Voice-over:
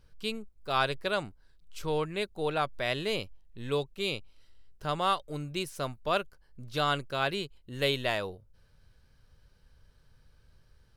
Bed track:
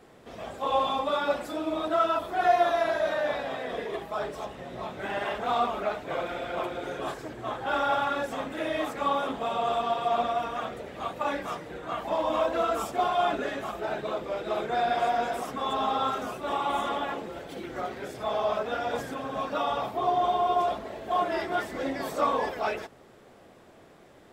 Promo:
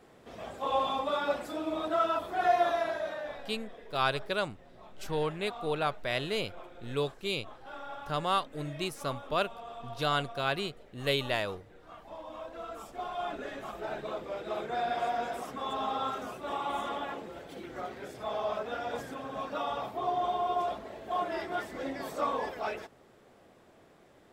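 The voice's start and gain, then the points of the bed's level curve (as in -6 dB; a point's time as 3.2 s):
3.25 s, -1.0 dB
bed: 2.71 s -3.5 dB
3.7 s -17 dB
12.43 s -17 dB
13.8 s -5.5 dB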